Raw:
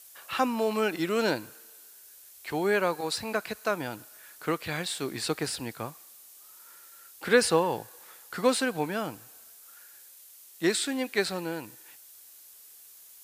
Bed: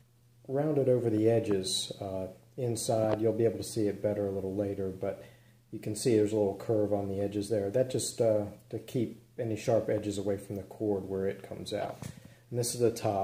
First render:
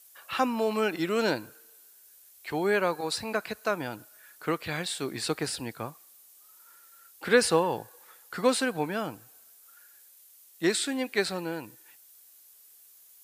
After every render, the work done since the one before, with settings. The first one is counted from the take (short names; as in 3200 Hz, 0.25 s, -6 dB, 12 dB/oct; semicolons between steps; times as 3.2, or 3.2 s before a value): denoiser 6 dB, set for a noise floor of -52 dBFS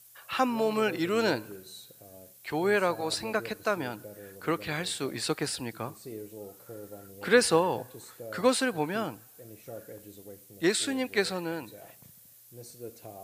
add bed -15.5 dB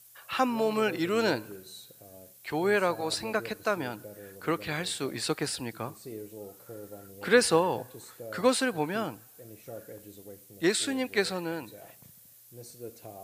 nothing audible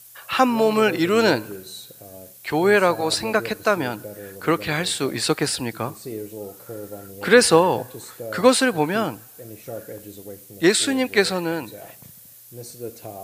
gain +9 dB; limiter -1 dBFS, peak gain reduction 2 dB